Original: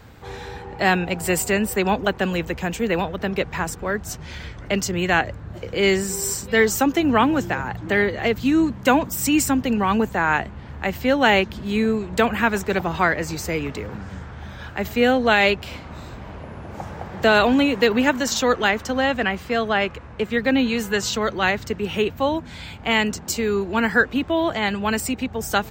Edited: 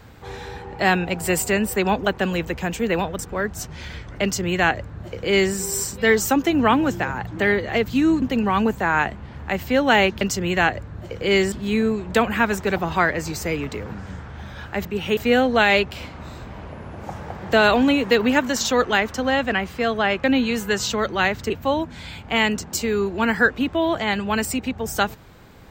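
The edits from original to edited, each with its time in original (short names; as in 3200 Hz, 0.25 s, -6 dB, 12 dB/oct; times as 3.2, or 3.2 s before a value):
3.19–3.69 cut
4.73–6.04 copy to 11.55
8.72–9.56 cut
19.95–20.47 cut
21.73–22.05 move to 14.88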